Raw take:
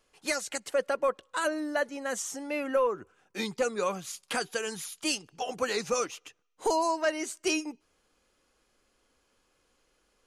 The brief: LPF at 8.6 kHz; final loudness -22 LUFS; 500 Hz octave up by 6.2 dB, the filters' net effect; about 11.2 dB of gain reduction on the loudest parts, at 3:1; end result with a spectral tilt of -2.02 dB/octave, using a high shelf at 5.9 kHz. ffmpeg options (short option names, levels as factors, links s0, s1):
-af "lowpass=8600,equalizer=f=500:t=o:g=7,highshelf=f=5900:g=7.5,acompressor=threshold=0.0251:ratio=3,volume=4.22"